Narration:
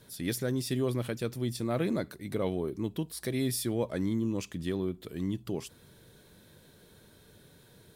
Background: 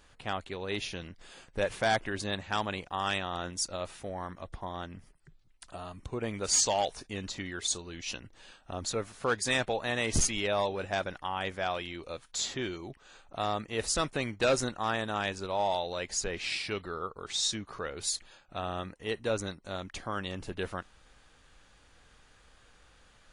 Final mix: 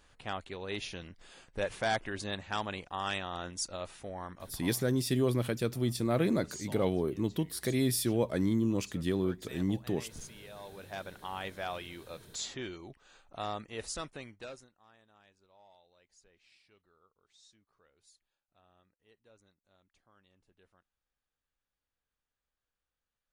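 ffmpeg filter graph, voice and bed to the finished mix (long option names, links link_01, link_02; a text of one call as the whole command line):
ffmpeg -i stem1.wav -i stem2.wav -filter_complex "[0:a]adelay=4400,volume=1.5dB[link_01];[1:a]volume=11dB,afade=type=out:start_time=4.42:duration=0.36:silence=0.149624,afade=type=in:start_time=10.58:duration=0.75:silence=0.188365,afade=type=out:start_time=13.5:duration=1.18:silence=0.0473151[link_02];[link_01][link_02]amix=inputs=2:normalize=0" out.wav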